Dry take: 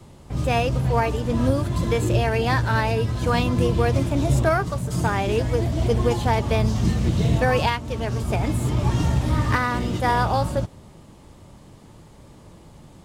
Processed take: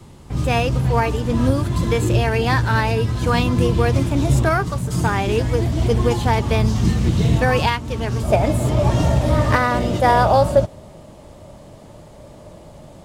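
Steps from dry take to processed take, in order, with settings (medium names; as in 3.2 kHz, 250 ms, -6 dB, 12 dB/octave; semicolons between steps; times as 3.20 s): peaking EQ 610 Hz -4.5 dB 0.43 oct, from 8.23 s +12.5 dB; trim +3.5 dB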